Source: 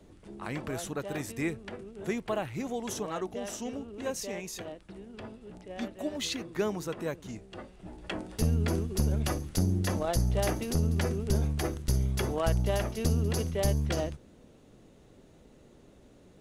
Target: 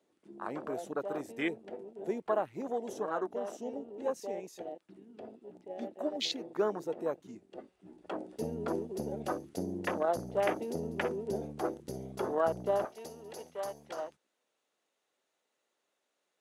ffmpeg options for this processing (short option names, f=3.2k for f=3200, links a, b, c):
-af "afwtdn=0.0141,asetnsamples=n=441:p=0,asendcmd='12.85 highpass f 930',highpass=370,volume=2.5dB"